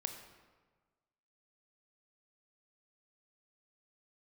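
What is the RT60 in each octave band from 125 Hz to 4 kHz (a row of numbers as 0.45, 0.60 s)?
1.6, 1.4, 1.4, 1.4, 1.2, 0.90 s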